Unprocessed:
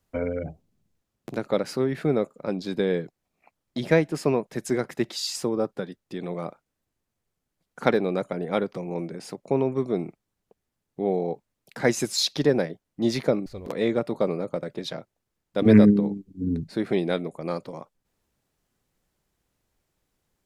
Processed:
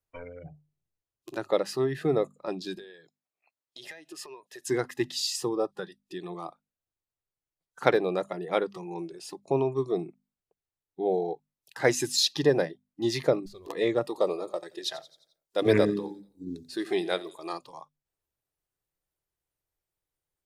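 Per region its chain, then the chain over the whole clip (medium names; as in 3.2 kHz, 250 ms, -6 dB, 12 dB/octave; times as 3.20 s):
2.78–4.67 s: high-pass 380 Hz 6 dB/octave + compression 16:1, threshold -34 dBFS
14.03–17.53 s: tone controls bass -6 dB, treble +6 dB + feedback delay 87 ms, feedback 53%, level -16.5 dB
whole clip: spectral noise reduction 14 dB; peaking EQ 220 Hz -14.5 dB 0.39 oct; hum notches 50/100/150/200/250 Hz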